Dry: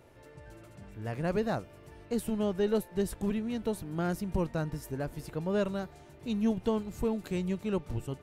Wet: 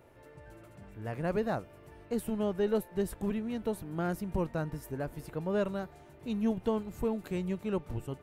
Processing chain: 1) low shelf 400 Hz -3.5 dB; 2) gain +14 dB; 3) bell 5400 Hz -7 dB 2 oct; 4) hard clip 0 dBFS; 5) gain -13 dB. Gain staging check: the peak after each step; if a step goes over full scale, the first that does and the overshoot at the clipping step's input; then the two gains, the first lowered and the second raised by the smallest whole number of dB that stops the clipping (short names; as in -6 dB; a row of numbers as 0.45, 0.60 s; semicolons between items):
-18.0, -4.0, -4.5, -4.5, -17.5 dBFS; no overload